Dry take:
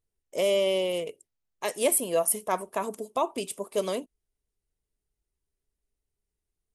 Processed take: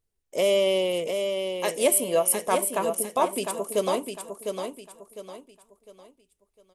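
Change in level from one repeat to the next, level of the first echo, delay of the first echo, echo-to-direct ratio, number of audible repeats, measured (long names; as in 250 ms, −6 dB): −9.5 dB, −6.0 dB, 704 ms, −5.5 dB, 4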